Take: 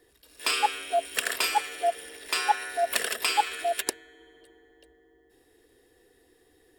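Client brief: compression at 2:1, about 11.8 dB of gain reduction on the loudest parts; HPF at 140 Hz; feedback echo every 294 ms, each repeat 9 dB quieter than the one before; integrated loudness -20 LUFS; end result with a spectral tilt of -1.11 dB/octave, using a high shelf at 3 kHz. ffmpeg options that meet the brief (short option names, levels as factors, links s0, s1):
-af "highpass=140,highshelf=f=3000:g=-6.5,acompressor=threshold=0.00891:ratio=2,aecho=1:1:294|588|882|1176:0.355|0.124|0.0435|0.0152,volume=7.94"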